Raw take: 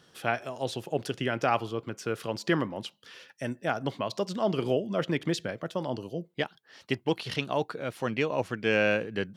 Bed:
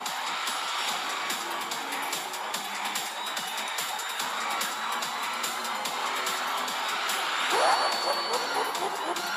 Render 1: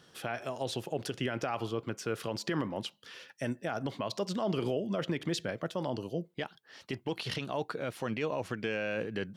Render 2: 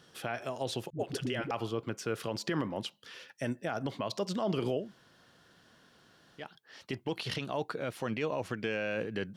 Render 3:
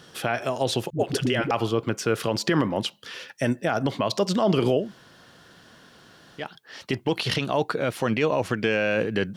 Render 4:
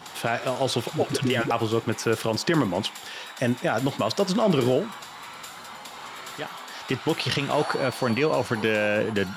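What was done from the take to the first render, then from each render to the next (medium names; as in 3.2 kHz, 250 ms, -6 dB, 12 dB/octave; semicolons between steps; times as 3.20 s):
peak limiter -22.5 dBFS, peak gain reduction 11.5 dB
0.90–1.51 s: phase dispersion highs, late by 93 ms, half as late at 340 Hz; 4.84–6.43 s: room tone, crossfade 0.16 s
trim +10.5 dB
add bed -9.5 dB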